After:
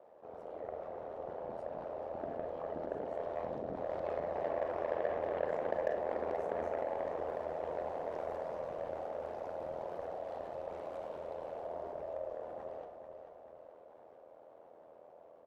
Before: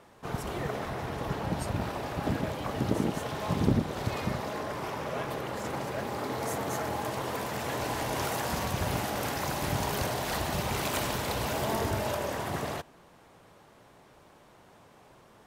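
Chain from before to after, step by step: Doppler pass-by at 5.29, 6 m/s, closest 3.5 m; AGC gain up to 8.5 dB; limiter -24 dBFS, peak gain reduction 11 dB; band-pass 570 Hz, Q 4.6; ring modulator 41 Hz; added harmonics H 3 -15 dB, 6 -40 dB, 7 -37 dB, 8 -37 dB, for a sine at -28 dBFS; feedback echo 0.439 s, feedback 37%, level -14.5 dB; on a send at -8 dB: reverb RT60 0.40 s, pre-delay 33 ms; on the sum: fast leveller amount 50%; gain +8 dB

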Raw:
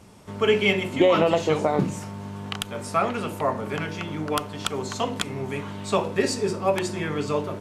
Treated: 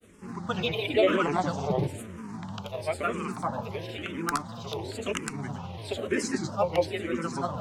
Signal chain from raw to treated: grains, pitch spread up and down by 3 st; endless phaser -1 Hz

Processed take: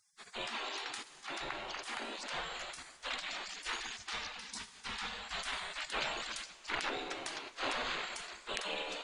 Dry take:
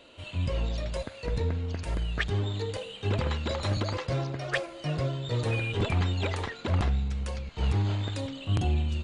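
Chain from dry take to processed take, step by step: spectral gate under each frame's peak -30 dB weak; high shelf 4200 Hz -8 dB; on a send: reverb RT60 3.3 s, pre-delay 5 ms, DRR 15 dB; on the sum: gain +9.5 dB

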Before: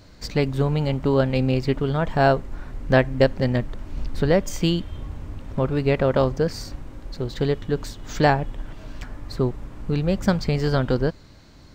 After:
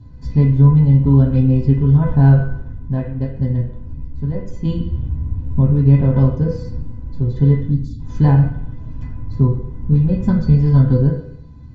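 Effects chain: RIAA curve playback; 7.7–7.99 spectral delete 310–3300 Hz; low shelf 440 Hz +5 dB; 2.57–4.65 compressor, threshold -9 dBFS, peak gain reduction 11.5 dB; resonator 500 Hz, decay 0.17 s, harmonics all, mix 90%; reverb RT60 0.70 s, pre-delay 3 ms, DRR -0.5 dB

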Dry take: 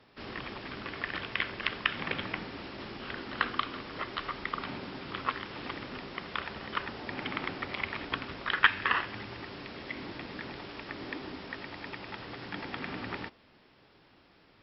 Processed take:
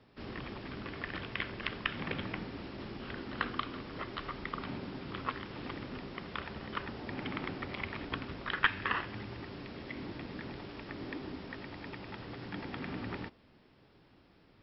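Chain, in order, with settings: low shelf 430 Hz +9 dB; gain -6 dB

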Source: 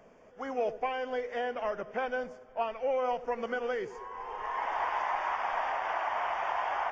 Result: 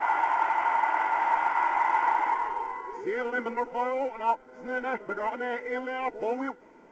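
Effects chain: whole clip reversed; small resonant body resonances 320/910/1400/2000 Hz, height 17 dB, ringing for 30 ms; gain -4 dB; µ-law 128 kbps 16000 Hz

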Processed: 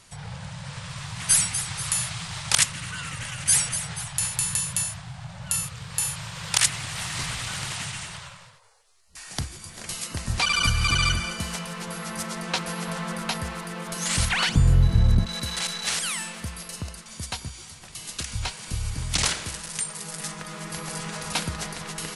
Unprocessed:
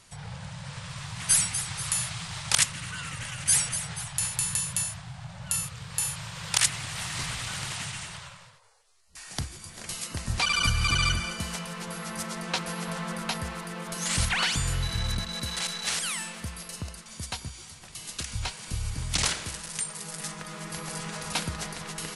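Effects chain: 14.49–15.26 tilt shelf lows +10 dB, about 780 Hz; gain +2.5 dB

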